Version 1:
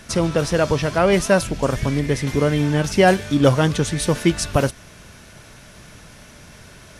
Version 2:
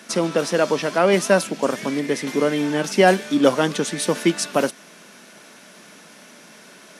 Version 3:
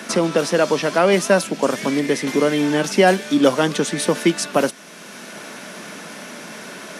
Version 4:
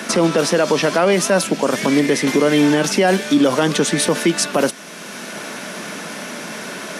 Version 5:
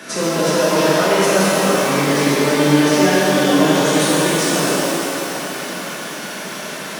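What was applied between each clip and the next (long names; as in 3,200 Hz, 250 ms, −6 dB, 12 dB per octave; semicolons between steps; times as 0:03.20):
Butterworth high-pass 190 Hz 36 dB per octave
multiband upward and downward compressor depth 40%; level +2 dB
brickwall limiter −11.5 dBFS, peak gain reduction 9.5 dB; level +5.5 dB
reverb with rising layers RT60 3.8 s, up +12 semitones, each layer −8 dB, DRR −10 dB; level −9.5 dB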